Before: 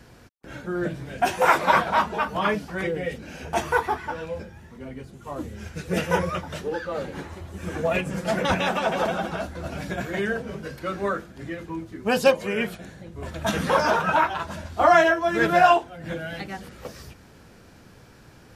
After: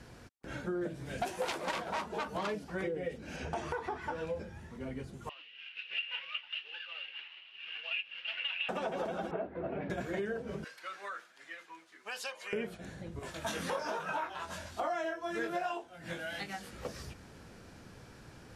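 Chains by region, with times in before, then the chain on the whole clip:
0:00.81–0:02.64: phase distortion by the signal itself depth 0.29 ms + high-shelf EQ 6,000 Hz +10 dB
0:03.36–0:04.02: low-pass filter 7,700 Hz + downward compressor 5 to 1, threshold −24 dBFS
0:05.29–0:08.69: variable-slope delta modulation 32 kbit/s + high-pass with resonance 2,800 Hz, resonance Q 15 + high-frequency loss of the air 480 metres
0:09.31–0:09.90: loudspeaker in its box 140–2,400 Hz, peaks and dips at 410 Hz +9 dB, 670 Hz +3 dB, 1,400 Hz −4 dB + one half of a high-frequency compander decoder only
0:10.64–0:12.53: Bessel high-pass filter 1,700 Hz + high-shelf EQ 4,700 Hz −6.5 dB + downward compressor 2.5 to 1, threshold −35 dBFS
0:13.19–0:16.73: spectral tilt +2 dB per octave + chorus effect 1.2 Hz, delay 19.5 ms, depth 3.5 ms
whole clip: low-pass filter 12,000 Hz 24 dB per octave; dynamic equaliser 400 Hz, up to +8 dB, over −35 dBFS, Q 0.77; downward compressor 6 to 1, threshold −31 dBFS; level −3 dB

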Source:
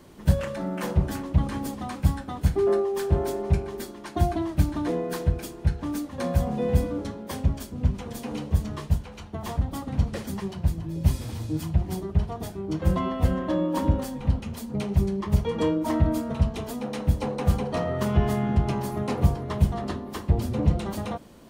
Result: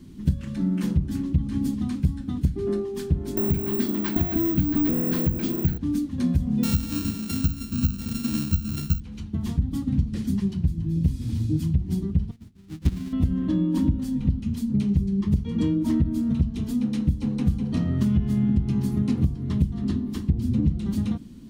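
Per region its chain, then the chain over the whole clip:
0:03.37–0:05.78: low-pass filter 8,400 Hz + mid-hump overdrive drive 27 dB, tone 1,200 Hz, clips at −9.5 dBFS + bad sample-rate conversion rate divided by 2×, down none, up zero stuff
0:06.63–0:09.00: samples sorted by size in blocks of 32 samples + high-shelf EQ 4,100 Hz +9.5 dB + bad sample-rate conversion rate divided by 2×, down filtered, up zero stuff
0:12.31–0:13.13: each half-wave held at its own peak + mains-hum notches 50/100/150/200/250/300/350/400 Hz + expander for the loud parts 2.5 to 1, over −34 dBFS
whole clip: drawn EQ curve 150 Hz 0 dB, 250 Hz +3 dB, 570 Hz −24 dB, 3,800 Hz −8 dB; downward compressor 12 to 1, threshold −25 dBFS; high-shelf EQ 9,300 Hz −6 dB; level +7.5 dB

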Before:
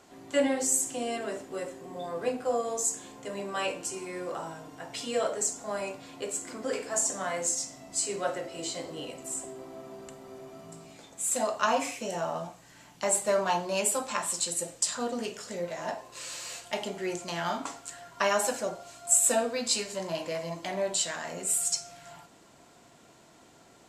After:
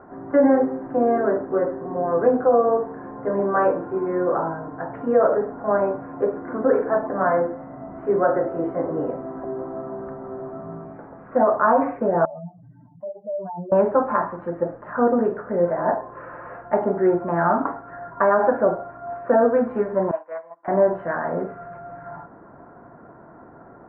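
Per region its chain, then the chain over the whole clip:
0:12.25–0:13.72: expanding power law on the bin magnitudes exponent 3 + resonant band-pass 100 Hz, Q 0.95
0:20.11–0:20.68: high-pass filter 920 Hz + comb filter 6.2 ms, depth 31% + expander for the loud parts 2.5 to 1, over −49 dBFS
whole clip: Butterworth low-pass 1,600 Hz 48 dB per octave; dynamic equaliser 380 Hz, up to +3 dB, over −42 dBFS, Q 1.2; boost into a limiter +19.5 dB; level −7 dB

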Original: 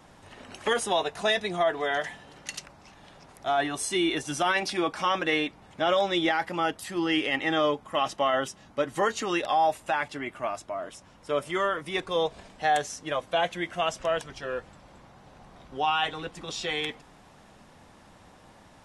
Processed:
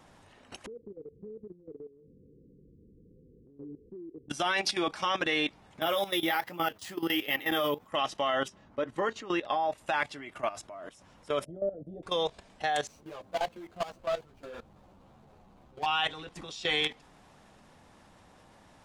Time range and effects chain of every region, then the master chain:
0:00.66–0:04.30: Chebyshev low-pass filter 510 Hz, order 10 + downward compressor 8 to 1, threshold −42 dBFS
0:05.81–0:07.88: flanger 1.3 Hz, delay 5.3 ms, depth 8.9 ms, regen +40% + high-pass filter 44 Hz + bad sample-rate conversion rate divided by 3×, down none, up hold
0:08.48–0:09.78: low-pass filter 1,500 Hz 6 dB per octave + parametric band 150 Hz −4 dB 0.29 octaves + notch filter 760 Hz, Q 13
0:11.45–0:12.03: elliptic low-pass filter 650 Hz + notch filter 370 Hz, Q 5.3
0:12.87–0:15.86: running median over 25 samples + string-ensemble chorus
whole clip: dynamic equaliser 4,200 Hz, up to +5 dB, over −44 dBFS, Q 0.78; output level in coarse steps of 15 dB; level +2 dB

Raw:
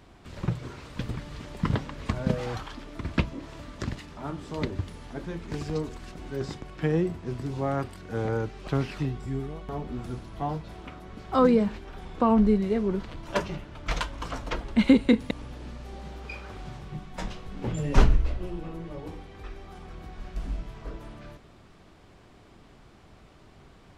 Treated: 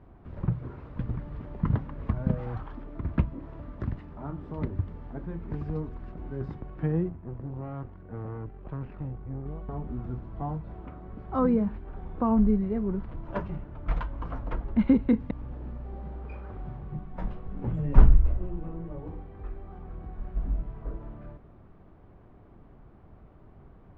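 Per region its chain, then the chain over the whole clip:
0:07.09–0:09.46: tube saturation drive 31 dB, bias 0.75 + high-frequency loss of the air 200 metres
whole clip: dynamic equaliser 470 Hz, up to −5 dB, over −39 dBFS, Q 0.9; low-pass filter 1,200 Hz 12 dB per octave; low-shelf EQ 160 Hz +6 dB; level −2 dB

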